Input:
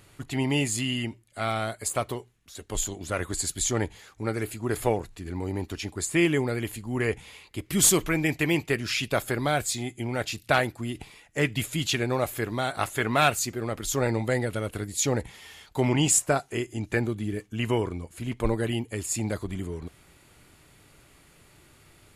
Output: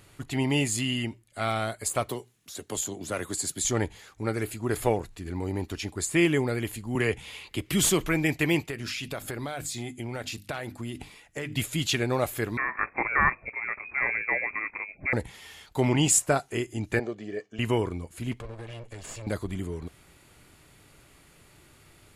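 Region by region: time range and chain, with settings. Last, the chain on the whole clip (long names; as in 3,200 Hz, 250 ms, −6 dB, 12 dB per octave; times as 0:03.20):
0:02.09–0:03.65: high-pass filter 130 Hz + parametric band 2,300 Hz −3.5 dB 2.4 octaves + multiband upward and downward compressor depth 40%
0:06.95–0:08.01: parametric band 3,000 Hz +4.5 dB 0.67 octaves + multiband upward and downward compressor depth 40%
0:08.64–0:11.56: mains-hum notches 50/100/150/200/250/300 Hz + downward compressor, threshold −30 dBFS
0:12.57–0:15.13: low-shelf EQ 270 Hz −6.5 dB + voice inversion scrambler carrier 2,500 Hz
0:16.99–0:17.59: loudspeaker in its box 300–5,900 Hz, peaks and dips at 410 Hz +4 dB, 680 Hz +4 dB, 1,200 Hz −6 dB, 2,500 Hz −4 dB, 3,600 Hz −8 dB + comb filter 1.7 ms, depth 42%
0:18.40–0:19.27: lower of the sound and its delayed copy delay 1.8 ms + low-pass filter 7,000 Hz + downward compressor 5 to 1, threshold −37 dBFS
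whole clip: no processing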